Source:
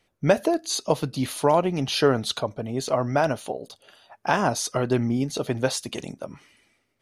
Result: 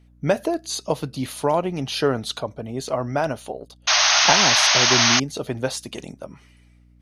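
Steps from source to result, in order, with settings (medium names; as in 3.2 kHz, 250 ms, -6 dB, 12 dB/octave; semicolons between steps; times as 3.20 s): 3.60–4.33 s: transient shaper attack +6 dB, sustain -10 dB; hum 60 Hz, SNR 27 dB; 3.87–5.20 s: painted sound noise 590–6600 Hz -16 dBFS; trim -1 dB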